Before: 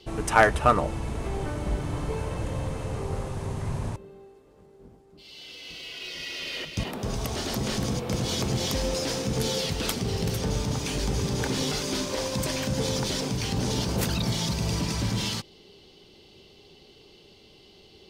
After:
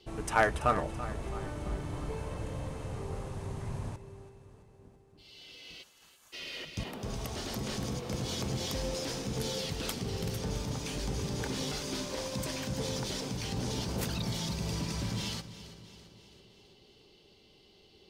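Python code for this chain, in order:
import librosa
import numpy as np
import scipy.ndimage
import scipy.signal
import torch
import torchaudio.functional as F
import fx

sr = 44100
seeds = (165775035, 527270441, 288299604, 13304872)

y = fx.spec_gate(x, sr, threshold_db=-25, keep='weak', at=(5.82, 6.32), fade=0.02)
y = fx.echo_feedback(y, sr, ms=333, feedback_pct=55, wet_db=-14.5)
y = y * librosa.db_to_amplitude(-7.5)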